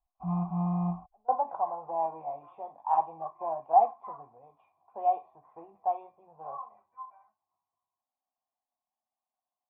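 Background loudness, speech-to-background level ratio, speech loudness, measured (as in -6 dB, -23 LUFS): -32.0 LUFS, 1.0 dB, -31.0 LUFS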